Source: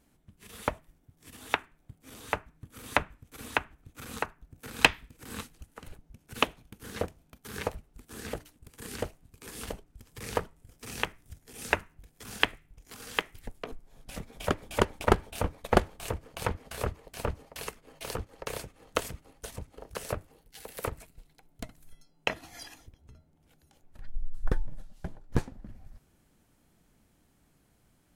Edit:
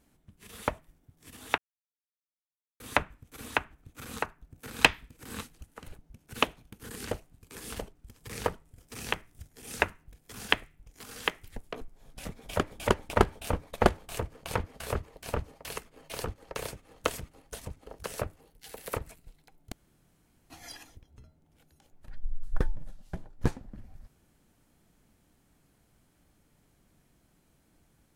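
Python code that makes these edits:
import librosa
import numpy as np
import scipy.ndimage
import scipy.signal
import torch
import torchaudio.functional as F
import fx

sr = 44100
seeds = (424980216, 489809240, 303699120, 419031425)

y = fx.edit(x, sr, fx.silence(start_s=1.58, length_s=1.22),
    fx.cut(start_s=6.89, length_s=1.91),
    fx.room_tone_fill(start_s=21.63, length_s=0.78), tone=tone)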